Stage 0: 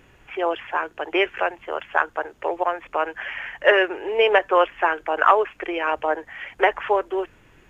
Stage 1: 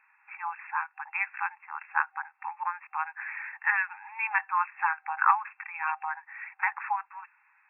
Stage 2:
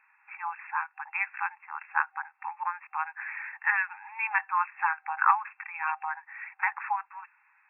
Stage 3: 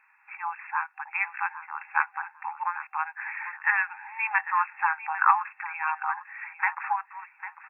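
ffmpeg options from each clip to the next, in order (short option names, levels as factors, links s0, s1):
-af "afftfilt=real='re*between(b*sr/4096,780,2700)':imag='im*between(b*sr/4096,780,2700)':win_size=4096:overlap=0.75,volume=0.531"
-af anull
-af "aecho=1:1:799|1598:0.224|0.0448,volume=1.26"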